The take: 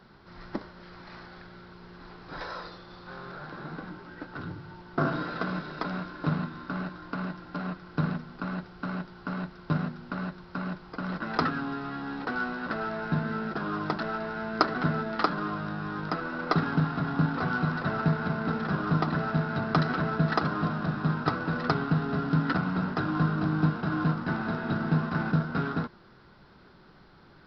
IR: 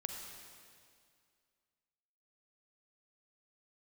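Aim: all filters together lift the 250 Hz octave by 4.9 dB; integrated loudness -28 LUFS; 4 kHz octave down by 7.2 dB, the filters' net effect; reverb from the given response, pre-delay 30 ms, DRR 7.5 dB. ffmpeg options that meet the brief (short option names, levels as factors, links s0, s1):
-filter_complex "[0:a]equalizer=f=250:t=o:g=7,equalizer=f=4000:t=o:g=-9,asplit=2[s0][s1];[1:a]atrim=start_sample=2205,adelay=30[s2];[s1][s2]afir=irnorm=-1:irlink=0,volume=0.447[s3];[s0][s3]amix=inputs=2:normalize=0,volume=0.891"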